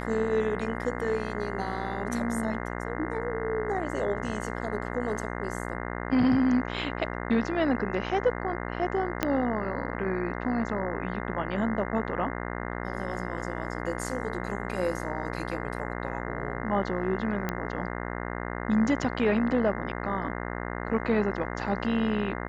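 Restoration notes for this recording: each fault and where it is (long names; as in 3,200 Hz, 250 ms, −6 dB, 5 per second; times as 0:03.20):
mains buzz 60 Hz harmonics 35 −34 dBFS
0:09.23: click −10 dBFS
0:17.49: click −15 dBFS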